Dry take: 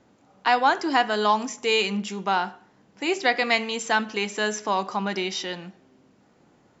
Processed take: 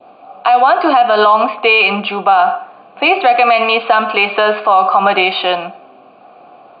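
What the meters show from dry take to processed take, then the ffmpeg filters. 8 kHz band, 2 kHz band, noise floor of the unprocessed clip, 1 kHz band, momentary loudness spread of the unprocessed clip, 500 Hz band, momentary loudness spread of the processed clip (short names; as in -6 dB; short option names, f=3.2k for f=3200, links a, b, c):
n/a, +11.0 dB, -60 dBFS, +14.0 dB, 8 LU, +13.0 dB, 6 LU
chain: -filter_complex "[0:a]asplit=3[a][b][c];[a]bandpass=f=730:t=q:w=8,volume=0dB[d];[b]bandpass=f=1.09k:t=q:w=8,volume=-6dB[e];[c]bandpass=f=2.44k:t=q:w=8,volume=-9dB[f];[d][e][f]amix=inputs=3:normalize=0,acrossover=split=340|3000[g][h][i];[h]acompressor=threshold=-31dB:ratio=6[j];[g][j][i]amix=inputs=3:normalize=0,adynamicequalizer=threshold=0.00316:dfrequency=1500:dqfactor=1.2:tfrequency=1500:tqfactor=1.2:attack=5:release=100:ratio=0.375:range=3.5:mode=boostabove:tftype=bell,alimiter=level_in=32dB:limit=-1dB:release=50:level=0:latency=1,volume=-1dB" -ar 16000 -c:a mp2 -b:a 48k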